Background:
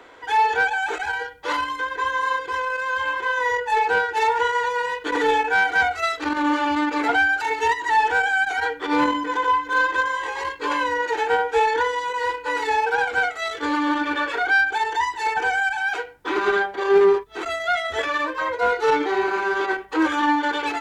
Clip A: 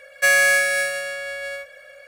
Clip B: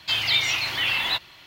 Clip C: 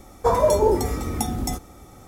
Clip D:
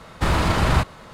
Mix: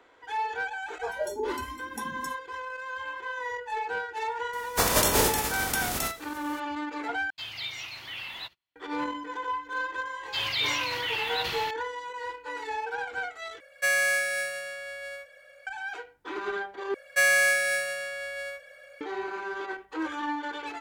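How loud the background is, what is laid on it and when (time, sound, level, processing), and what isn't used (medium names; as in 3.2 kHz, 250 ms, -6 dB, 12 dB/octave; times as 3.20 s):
background -12 dB
0.77 s: add C -12.5 dB + spectral noise reduction 19 dB
4.53 s: add C -5 dB + spectral contrast reduction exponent 0.32
7.30 s: replace with B -14.5 dB + gate -44 dBFS, range -28 dB
10.25 s: add B -7.5 dB + decay stretcher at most 29 dB/s
13.60 s: replace with A -8.5 dB
16.94 s: replace with A -5.5 dB
not used: D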